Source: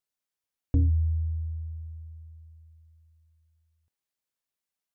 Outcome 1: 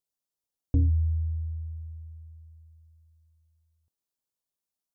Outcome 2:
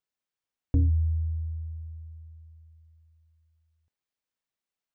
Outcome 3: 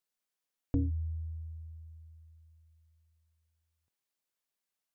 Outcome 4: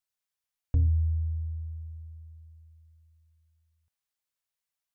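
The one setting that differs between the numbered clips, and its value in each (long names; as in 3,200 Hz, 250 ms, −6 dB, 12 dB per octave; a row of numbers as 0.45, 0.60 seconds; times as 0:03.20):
parametric band, centre frequency: 2,000, 14,000, 67, 310 Hertz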